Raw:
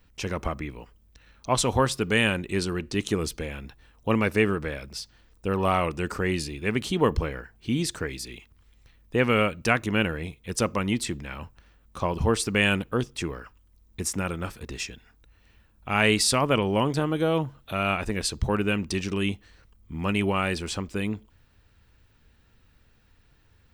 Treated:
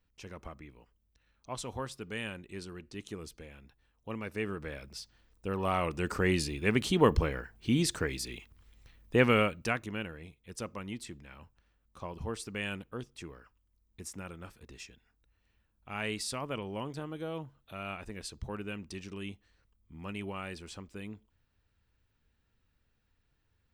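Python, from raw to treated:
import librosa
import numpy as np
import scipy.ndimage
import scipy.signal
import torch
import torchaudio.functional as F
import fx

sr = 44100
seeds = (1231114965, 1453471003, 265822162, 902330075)

y = fx.gain(x, sr, db=fx.line((4.22, -16.0), (4.76, -8.0), (5.63, -8.0), (6.26, -1.5), (9.24, -1.5), (10.04, -14.5)))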